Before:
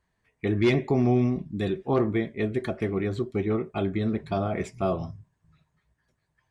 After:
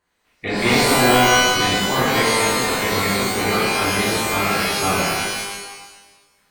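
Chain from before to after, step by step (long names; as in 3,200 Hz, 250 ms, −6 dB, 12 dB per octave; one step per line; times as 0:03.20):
ceiling on every frequency bin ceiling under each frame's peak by 17 dB
reverb with rising layers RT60 1.1 s, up +12 semitones, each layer −2 dB, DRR −7 dB
level −2 dB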